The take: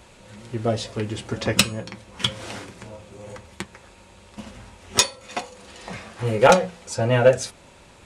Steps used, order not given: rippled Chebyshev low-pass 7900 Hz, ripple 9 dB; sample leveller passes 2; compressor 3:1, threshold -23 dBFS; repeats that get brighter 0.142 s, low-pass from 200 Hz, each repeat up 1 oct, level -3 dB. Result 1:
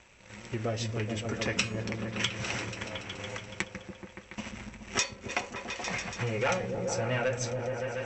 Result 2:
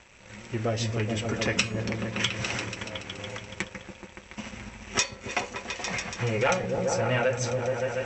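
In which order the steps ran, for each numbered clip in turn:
sample leveller > repeats that get brighter > compressor > rippled Chebyshev low-pass; repeats that get brighter > compressor > sample leveller > rippled Chebyshev low-pass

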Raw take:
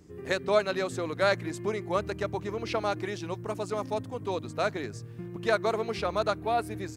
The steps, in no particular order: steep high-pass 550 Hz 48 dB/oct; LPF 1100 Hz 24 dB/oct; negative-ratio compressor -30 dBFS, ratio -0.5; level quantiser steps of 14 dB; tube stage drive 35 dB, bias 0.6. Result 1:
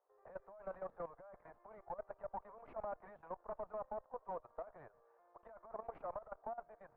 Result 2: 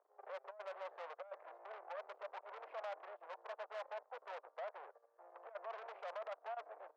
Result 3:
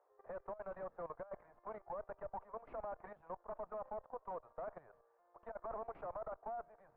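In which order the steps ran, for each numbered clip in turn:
negative-ratio compressor > steep high-pass > tube stage > LPF > level quantiser; LPF > negative-ratio compressor > tube stage > level quantiser > steep high-pass; steep high-pass > negative-ratio compressor > tube stage > level quantiser > LPF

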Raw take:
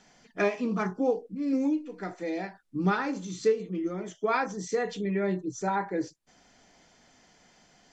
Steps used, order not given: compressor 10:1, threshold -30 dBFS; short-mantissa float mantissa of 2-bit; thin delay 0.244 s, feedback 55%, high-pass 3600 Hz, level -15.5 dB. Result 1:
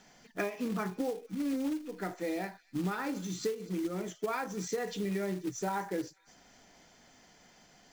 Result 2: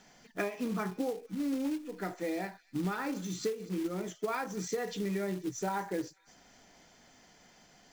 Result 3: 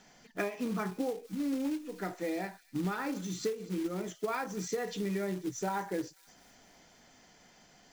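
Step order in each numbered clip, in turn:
thin delay > compressor > short-mantissa float; thin delay > short-mantissa float > compressor; short-mantissa float > thin delay > compressor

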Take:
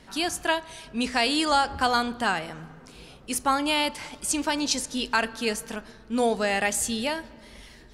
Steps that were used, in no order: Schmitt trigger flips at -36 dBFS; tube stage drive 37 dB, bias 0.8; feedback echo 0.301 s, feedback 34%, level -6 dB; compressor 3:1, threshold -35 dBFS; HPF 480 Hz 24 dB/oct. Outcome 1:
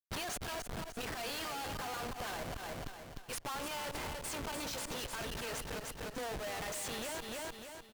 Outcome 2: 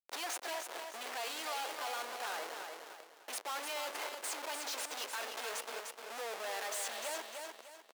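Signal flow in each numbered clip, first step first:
HPF > Schmitt trigger > feedback echo > compressor > tube stage; Schmitt trigger > tube stage > feedback echo > compressor > HPF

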